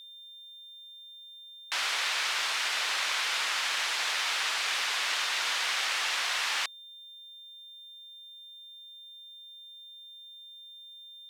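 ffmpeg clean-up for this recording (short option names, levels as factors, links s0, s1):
-af "bandreject=f=3600:w=30,agate=range=0.0891:threshold=0.00891"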